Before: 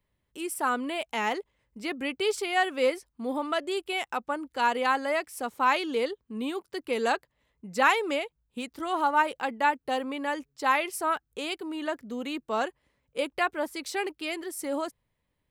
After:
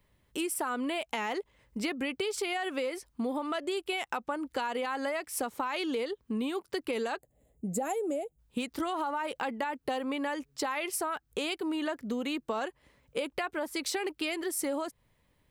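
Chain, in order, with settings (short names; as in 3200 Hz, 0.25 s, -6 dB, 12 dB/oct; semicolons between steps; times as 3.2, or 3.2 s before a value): spectral gain 7.18–8.39, 820–6500 Hz -19 dB; limiter -22.5 dBFS, peak gain reduction 11 dB; compressor 10:1, threshold -38 dBFS, peak gain reduction 12 dB; gain +8.5 dB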